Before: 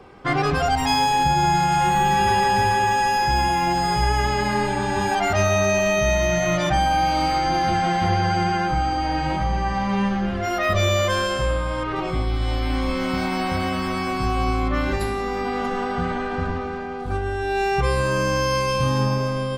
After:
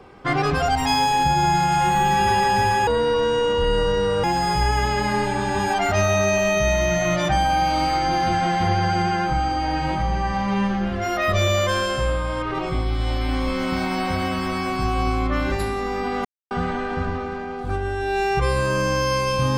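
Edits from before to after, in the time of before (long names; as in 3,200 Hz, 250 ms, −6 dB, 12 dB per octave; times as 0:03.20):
0:02.87–0:03.65: play speed 57%
0:15.66–0:15.92: silence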